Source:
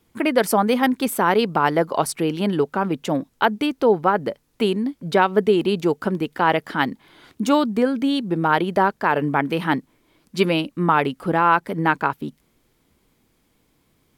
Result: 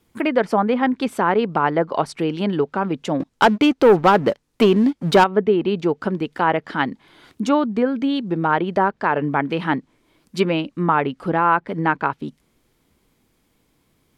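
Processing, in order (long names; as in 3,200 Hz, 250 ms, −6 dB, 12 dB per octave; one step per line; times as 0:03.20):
treble cut that deepens with the level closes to 2,200 Hz, closed at −14 dBFS
0:03.20–0:05.24: leveller curve on the samples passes 2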